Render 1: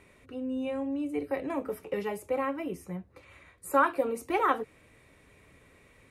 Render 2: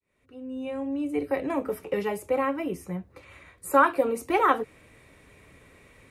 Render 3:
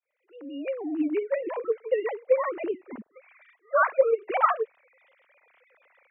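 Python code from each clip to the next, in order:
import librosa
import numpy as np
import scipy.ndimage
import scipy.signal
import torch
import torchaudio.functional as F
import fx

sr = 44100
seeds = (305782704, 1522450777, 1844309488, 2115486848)

y1 = fx.fade_in_head(x, sr, length_s=1.2)
y1 = y1 * 10.0 ** (4.5 / 20.0)
y2 = fx.sine_speech(y1, sr)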